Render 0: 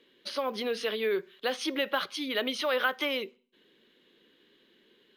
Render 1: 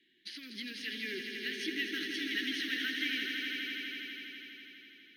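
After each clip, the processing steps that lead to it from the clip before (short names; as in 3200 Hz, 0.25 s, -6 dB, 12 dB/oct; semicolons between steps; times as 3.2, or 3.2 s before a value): Chebyshev band-stop 350–1800 Hz, order 4; bell 1100 Hz +14 dB 1.9 oct; swelling echo 82 ms, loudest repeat 5, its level -8 dB; gain -9 dB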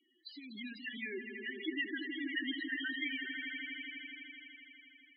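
loudest bins only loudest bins 8; gain +1 dB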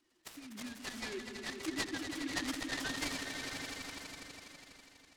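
noise-modulated delay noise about 2000 Hz, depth 0.086 ms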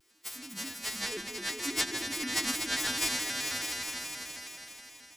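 frequency quantiser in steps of 2 st; echo with dull and thin repeats by turns 0.217 s, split 1800 Hz, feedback 55%, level -12.5 dB; shaped vibrato square 4.7 Hz, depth 160 cents; gain +3 dB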